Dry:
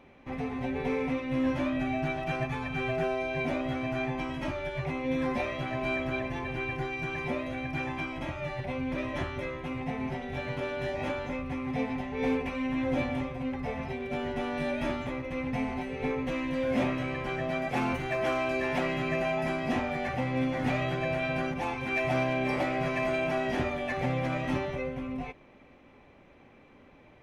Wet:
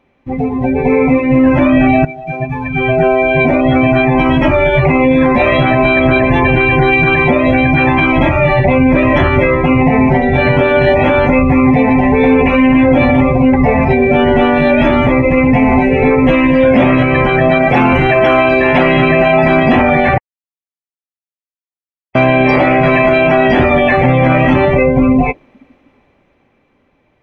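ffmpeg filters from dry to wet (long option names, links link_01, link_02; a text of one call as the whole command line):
ffmpeg -i in.wav -filter_complex "[0:a]asplit=4[link_01][link_02][link_03][link_04];[link_01]atrim=end=2.05,asetpts=PTS-STARTPTS,afade=type=out:start_time=2.046:duration=0.004:curve=hsin:silence=0.1[link_05];[link_02]atrim=start=2.05:end=20.18,asetpts=PTS-STARTPTS,afade=type=in:duration=2.84:silence=0.1,afade=type=out:start_time=18.126:duration=0.004:curve=hsin[link_06];[link_03]atrim=start=20.18:end=22.15,asetpts=PTS-STARTPTS,volume=0[link_07];[link_04]atrim=start=22.15,asetpts=PTS-STARTPTS,afade=type=in:duration=0.004:curve=hsin[link_08];[link_05][link_06][link_07][link_08]concat=n=4:v=0:a=1,dynaudnorm=framelen=100:gausssize=31:maxgain=9dB,afftdn=noise_reduction=20:noise_floor=-33,alimiter=level_in=19.5dB:limit=-1dB:release=50:level=0:latency=1,volume=-1dB" out.wav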